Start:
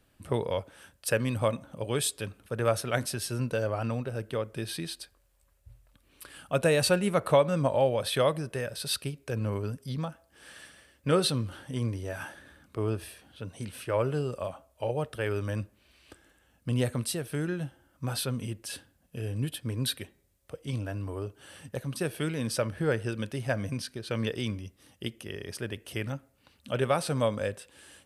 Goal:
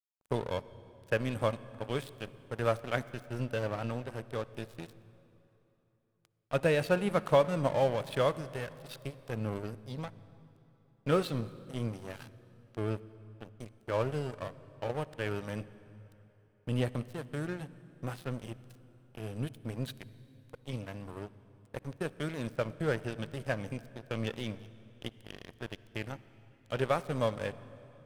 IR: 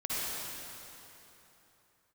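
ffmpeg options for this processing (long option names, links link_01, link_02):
-filter_complex "[0:a]acrossover=split=3600[link_01][link_02];[link_02]acompressor=threshold=-47dB:ratio=4:attack=1:release=60[link_03];[link_01][link_03]amix=inputs=2:normalize=0,aeval=exprs='sgn(val(0))*max(abs(val(0))-0.015,0)':channel_layout=same,asplit=2[link_04][link_05];[1:a]atrim=start_sample=2205,lowshelf=frequency=170:gain=10.5[link_06];[link_05][link_06]afir=irnorm=-1:irlink=0,volume=-24dB[link_07];[link_04][link_07]amix=inputs=2:normalize=0,volume=-2dB"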